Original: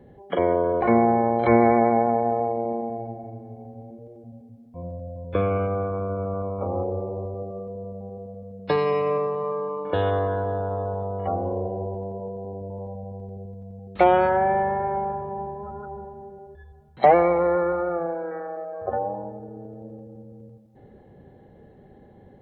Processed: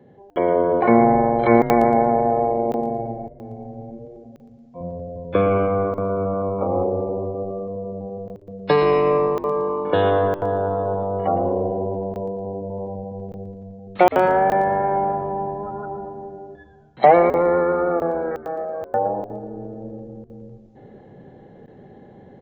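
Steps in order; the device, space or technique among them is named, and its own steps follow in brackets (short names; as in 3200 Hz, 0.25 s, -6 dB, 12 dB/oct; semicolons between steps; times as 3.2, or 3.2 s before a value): call with lost packets (HPF 110 Hz 24 dB/oct; downsampling 16000 Hz; AGC gain up to 6 dB; packet loss packets of 20 ms bursts); 4.05–4.81 HPF 310 Hz 6 dB/oct; frequency-shifting echo 0.115 s, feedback 35%, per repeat -94 Hz, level -13.5 dB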